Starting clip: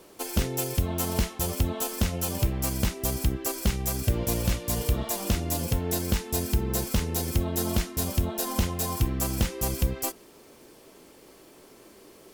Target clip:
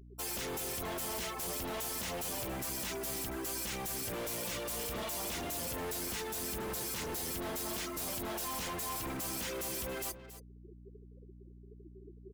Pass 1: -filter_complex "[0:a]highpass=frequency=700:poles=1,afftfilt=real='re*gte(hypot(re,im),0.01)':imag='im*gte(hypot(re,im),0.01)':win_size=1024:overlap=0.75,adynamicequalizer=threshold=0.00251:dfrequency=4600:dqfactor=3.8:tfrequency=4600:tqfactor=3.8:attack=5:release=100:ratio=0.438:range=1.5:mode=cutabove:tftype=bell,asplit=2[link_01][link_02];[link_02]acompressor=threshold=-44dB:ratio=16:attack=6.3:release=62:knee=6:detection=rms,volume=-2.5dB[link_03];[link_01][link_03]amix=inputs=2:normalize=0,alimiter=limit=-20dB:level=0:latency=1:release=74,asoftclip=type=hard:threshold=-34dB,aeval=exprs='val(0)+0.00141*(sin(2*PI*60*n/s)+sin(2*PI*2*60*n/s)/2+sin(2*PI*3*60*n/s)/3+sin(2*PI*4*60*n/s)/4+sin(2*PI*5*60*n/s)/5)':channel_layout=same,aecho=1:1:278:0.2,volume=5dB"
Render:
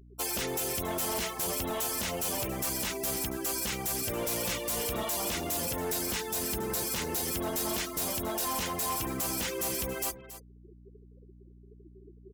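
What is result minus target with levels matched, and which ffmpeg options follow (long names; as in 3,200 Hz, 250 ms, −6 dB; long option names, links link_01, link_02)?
downward compressor: peak gain reduction +11 dB; hard clipping: distortion −4 dB
-filter_complex "[0:a]highpass=frequency=700:poles=1,afftfilt=real='re*gte(hypot(re,im),0.01)':imag='im*gte(hypot(re,im),0.01)':win_size=1024:overlap=0.75,adynamicequalizer=threshold=0.00251:dfrequency=4600:dqfactor=3.8:tfrequency=4600:tqfactor=3.8:attack=5:release=100:ratio=0.438:range=1.5:mode=cutabove:tftype=bell,asplit=2[link_01][link_02];[link_02]acompressor=threshold=-32.5dB:ratio=16:attack=6.3:release=62:knee=6:detection=rms,volume=-2.5dB[link_03];[link_01][link_03]amix=inputs=2:normalize=0,alimiter=limit=-20dB:level=0:latency=1:release=74,asoftclip=type=hard:threshold=-42.5dB,aeval=exprs='val(0)+0.00141*(sin(2*PI*60*n/s)+sin(2*PI*2*60*n/s)/2+sin(2*PI*3*60*n/s)/3+sin(2*PI*4*60*n/s)/4+sin(2*PI*5*60*n/s)/5)':channel_layout=same,aecho=1:1:278:0.2,volume=5dB"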